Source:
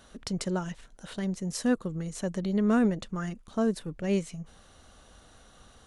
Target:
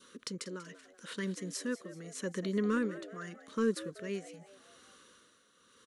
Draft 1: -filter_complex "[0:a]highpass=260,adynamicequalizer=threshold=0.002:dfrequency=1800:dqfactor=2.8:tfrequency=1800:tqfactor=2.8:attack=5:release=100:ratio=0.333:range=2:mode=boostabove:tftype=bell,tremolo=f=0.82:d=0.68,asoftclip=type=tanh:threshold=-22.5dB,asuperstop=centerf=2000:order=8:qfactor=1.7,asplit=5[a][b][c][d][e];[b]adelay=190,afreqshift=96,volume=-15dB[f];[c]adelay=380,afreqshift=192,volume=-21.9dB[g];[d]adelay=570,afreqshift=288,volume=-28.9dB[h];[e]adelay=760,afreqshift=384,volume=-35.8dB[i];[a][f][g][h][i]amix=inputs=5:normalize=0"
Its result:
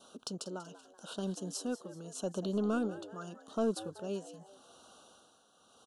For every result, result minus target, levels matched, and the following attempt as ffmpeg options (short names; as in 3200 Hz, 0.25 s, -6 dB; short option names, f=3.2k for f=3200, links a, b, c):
soft clip: distortion +13 dB; 2000 Hz band -7.5 dB
-filter_complex "[0:a]highpass=260,adynamicequalizer=threshold=0.002:dfrequency=1800:dqfactor=2.8:tfrequency=1800:tqfactor=2.8:attack=5:release=100:ratio=0.333:range=2:mode=boostabove:tftype=bell,tremolo=f=0.82:d=0.68,asoftclip=type=tanh:threshold=-14dB,asuperstop=centerf=2000:order=8:qfactor=1.7,asplit=5[a][b][c][d][e];[b]adelay=190,afreqshift=96,volume=-15dB[f];[c]adelay=380,afreqshift=192,volume=-21.9dB[g];[d]adelay=570,afreqshift=288,volume=-28.9dB[h];[e]adelay=760,afreqshift=384,volume=-35.8dB[i];[a][f][g][h][i]amix=inputs=5:normalize=0"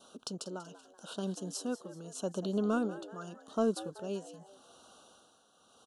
2000 Hz band -7.5 dB
-filter_complex "[0:a]highpass=260,adynamicequalizer=threshold=0.002:dfrequency=1800:dqfactor=2.8:tfrequency=1800:tqfactor=2.8:attack=5:release=100:ratio=0.333:range=2:mode=boostabove:tftype=bell,tremolo=f=0.82:d=0.68,asoftclip=type=tanh:threshold=-14dB,asuperstop=centerf=730:order=8:qfactor=1.7,asplit=5[a][b][c][d][e];[b]adelay=190,afreqshift=96,volume=-15dB[f];[c]adelay=380,afreqshift=192,volume=-21.9dB[g];[d]adelay=570,afreqshift=288,volume=-28.9dB[h];[e]adelay=760,afreqshift=384,volume=-35.8dB[i];[a][f][g][h][i]amix=inputs=5:normalize=0"